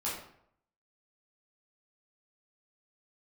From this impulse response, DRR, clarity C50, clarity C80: -8.5 dB, 2.5 dB, 6.5 dB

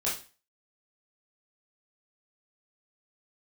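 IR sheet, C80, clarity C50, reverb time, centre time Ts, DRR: 13.0 dB, 6.5 dB, 0.35 s, 33 ms, -8.0 dB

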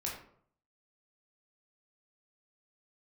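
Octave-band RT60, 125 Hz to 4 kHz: 0.75 s, 0.60 s, 0.60 s, 0.60 s, 0.45 s, 0.35 s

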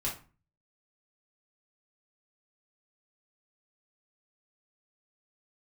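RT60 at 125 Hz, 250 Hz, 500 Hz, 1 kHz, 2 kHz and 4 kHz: 0.60 s, 0.50 s, 0.35 s, 0.35 s, 0.30 s, 0.25 s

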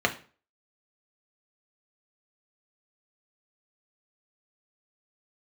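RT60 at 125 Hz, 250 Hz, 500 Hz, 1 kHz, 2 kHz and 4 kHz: 0.40 s, 0.40 s, 0.40 s, 0.40 s, 0.35 s, 0.35 s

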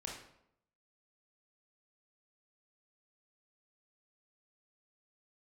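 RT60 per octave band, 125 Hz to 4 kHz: 0.80 s, 0.80 s, 0.80 s, 0.70 s, 0.60 s, 0.55 s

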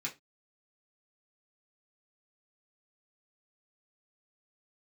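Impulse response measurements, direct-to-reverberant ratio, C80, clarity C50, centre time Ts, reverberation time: -4.5 dB, 24.5 dB, 16.5 dB, 13 ms, 0.20 s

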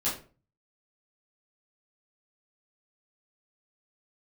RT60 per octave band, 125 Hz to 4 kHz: 0.65 s, 0.45 s, 0.40 s, 0.35 s, 0.30 s, 0.25 s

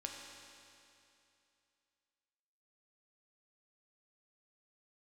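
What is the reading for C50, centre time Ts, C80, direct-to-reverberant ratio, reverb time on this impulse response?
2.0 dB, 100 ms, 3.0 dB, 0.0 dB, 2.7 s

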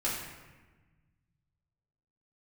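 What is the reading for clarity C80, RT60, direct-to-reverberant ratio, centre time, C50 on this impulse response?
4.0 dB, 1.3 s, -8.5 dB, 65 ms, 2.0 dB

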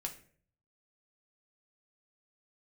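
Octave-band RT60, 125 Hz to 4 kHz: 0.90 s, 0.65 s, 0.60 s, 0.40 s, 0.45 s, 0.35 s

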